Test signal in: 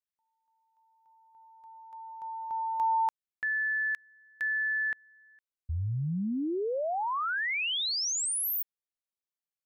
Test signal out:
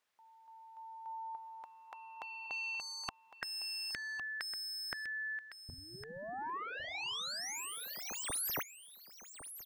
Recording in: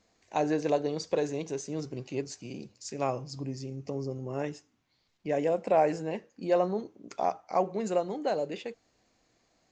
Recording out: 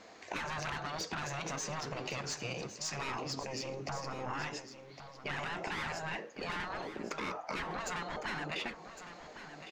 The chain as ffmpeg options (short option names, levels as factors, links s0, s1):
-filter_complex "[0:a]asplit=2[s0][s1];[s1]highpass=f=720:p=1,volume=20,asoftclip=type=tanh:threshold=0.211[s2];[s0][s2]amix=inputs=2:normalize=0,lowpass=f=1600:p=1,volume=0.501,afftfilt=real='re*lt(hypot(re,im),0.141)':imag='im*lt(hypot(re,im),0.141)':win_size=1024:overlap=0.75,acompressor=threshold=0.0126:ratio=2.5:attack=11:release=338:detection=rms,asplit=2[s3][s4];[s4]aecho=0:1:1108:0.266[s5];[s3][s5]amix=inputs=2:normalize=0,volume=1.19"